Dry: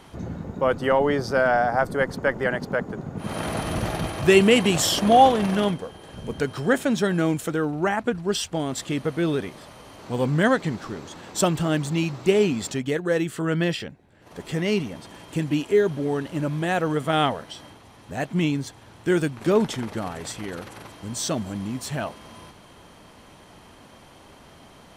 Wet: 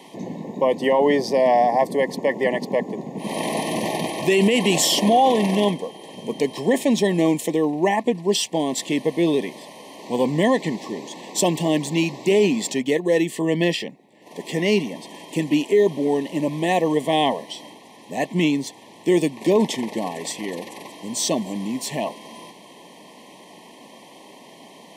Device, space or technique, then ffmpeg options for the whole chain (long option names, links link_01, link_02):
PA system with an anti-feedback notch: -af "highpass=frequency=190:width=0.5412,highpass=frequency=190:width=1.3066,asuperstop=centerf=1400:order=20:qfactor=2.2,alimiter=limit=-14dB:level=0:latency=1:release=21,volume=5dB"